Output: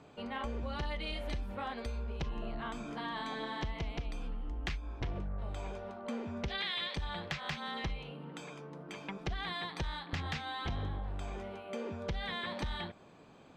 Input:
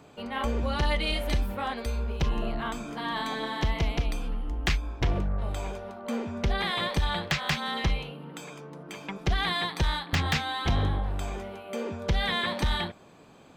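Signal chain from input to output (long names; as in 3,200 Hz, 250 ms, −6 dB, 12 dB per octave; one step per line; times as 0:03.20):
0:06.48–0:06.96: meter weighting curve D
downward compressor 3 to 1, threshold −32 dBFS, peak gain reduction 11 dB
high-frequency loss of the air 59 metres
level −4 dB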